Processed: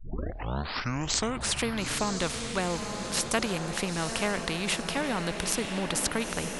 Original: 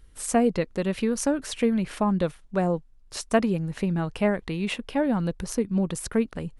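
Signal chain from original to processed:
turntable start at the beginning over 1.59 s
feedback delay with all-pass diffusion 922 ms, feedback 51%, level −13 dB
every bin compressed towards the loudest bin 2 to 1

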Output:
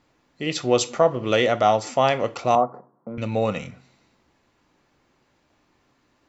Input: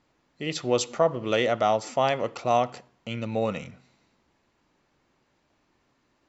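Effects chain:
0:02.55–0:03.18: elliptic band-pass filter 150–1,200 Hz, stop band 40 dB
reverb whose tail is shaped and stops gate 90 ms falling, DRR 12 dB
level +4 dB

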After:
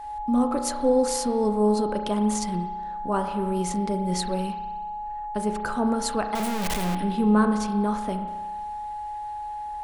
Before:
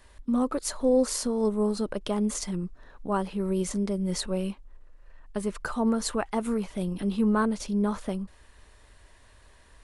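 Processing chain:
0:06.35–0:06.95: sign of each sample alone
steady tone 840 Hz −37 dBFS
spring reverb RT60 1.3 s, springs 33 ms, chirp 30 ms, DRR 6 dB
level +1.5 dB

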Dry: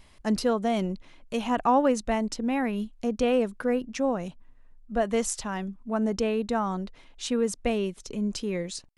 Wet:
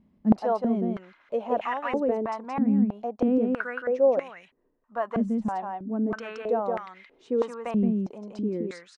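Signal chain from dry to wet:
single-tap delay 172 ms −3.5 dB
band-pass on a step sequencer 3.1 Hz 210–2,000 Hz
level +9 dB

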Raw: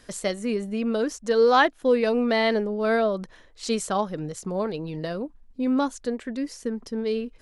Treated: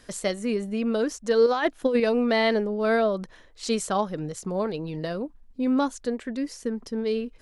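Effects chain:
0:01.46–0:02.00: compressor whose output falls as the input rises −21 dBFS, ratio −0.5

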